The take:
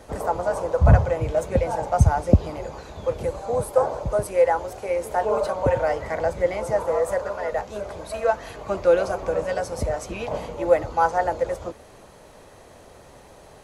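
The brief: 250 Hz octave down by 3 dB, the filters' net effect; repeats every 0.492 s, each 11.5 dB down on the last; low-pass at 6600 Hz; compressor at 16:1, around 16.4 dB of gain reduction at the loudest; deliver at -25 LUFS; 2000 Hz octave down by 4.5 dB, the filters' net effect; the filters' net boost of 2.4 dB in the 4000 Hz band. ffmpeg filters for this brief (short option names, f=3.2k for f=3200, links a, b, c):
-af "lowpass=6.6k,equalizer=f=250:t=o:g=-4.5,equalizer=f=2k:t=o:g=-7.5,equalizer=f=4k:t=o:g=6,acompressor=threshold=-26dB:ratio=16,aecho=1:1:492|984|1476:0.266|0.0718|0.0194,volume=7dB"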